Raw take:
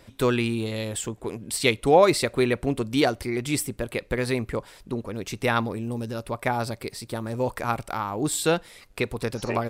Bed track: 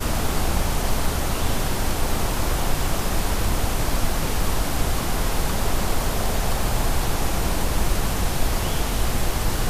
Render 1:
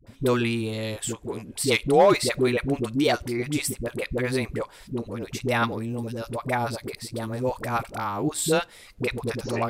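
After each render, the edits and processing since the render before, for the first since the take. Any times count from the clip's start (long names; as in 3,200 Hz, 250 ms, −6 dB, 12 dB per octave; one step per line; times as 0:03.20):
hard clipping −9.5 dBFS, distortion −25 dB
all-pass dispersion highs, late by 69 ms, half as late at 490 Hz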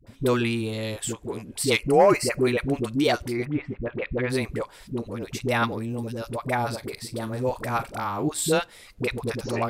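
0:01.79–0:02.47: Butterworth band-reject 3,600 Hz, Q 2.2
0:03.44–0:04.29: low-pass filter 1,700 Hz → 3,700 Hz 24 dB per octave
0:06.54–0:08.28: double-tracking delay 41 ms −14 dB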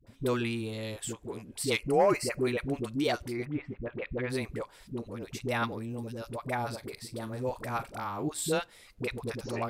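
level −7 dB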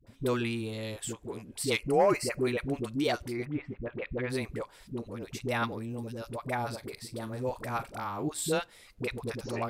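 no processing that can be heard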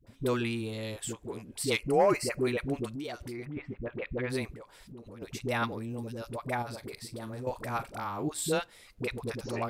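0:02.92–0:03.57: downward compressor 4 to 1, threshold −36 dBFS
0:04.53–0:05.22: downward compressor 8 to 1, threshold −43 dBFS
0:06.62–0:07.47: downward compressor, threshold −35 dBFS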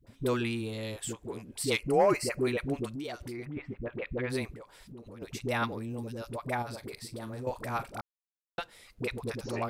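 0:08.01–0:08.58: silence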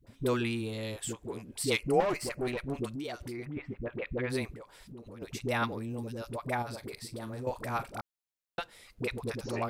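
0:02.00–0:02.75: tube saturation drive 26 dB, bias 0.7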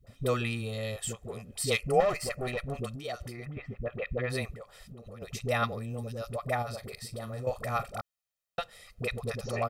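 comb filter 1.6 ms, depth 74%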